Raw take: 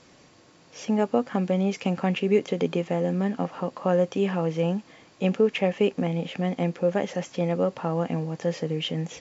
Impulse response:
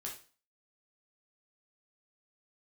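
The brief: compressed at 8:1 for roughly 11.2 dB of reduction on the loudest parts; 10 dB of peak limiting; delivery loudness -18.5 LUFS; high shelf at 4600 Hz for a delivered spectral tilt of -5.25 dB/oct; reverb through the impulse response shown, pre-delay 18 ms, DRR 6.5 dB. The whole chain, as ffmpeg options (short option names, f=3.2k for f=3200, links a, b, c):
-filter_complex "[0:a]highshelf=f=4.6k:g=9,acompressor=threshold=-28dB:ratio=8,alimiter=level_in=1dB:limit=-24dB:level=0:latency=1,volume=-1dB,asplit=2[a][b];[1:a]atrim=start_sample=2205,adelay=18[c];[b][c]afir=irnorm=-1:irlink=0,volume=-5dB[d];[a][d]amix=inputs=2:normalize=0,volume=16.5dB"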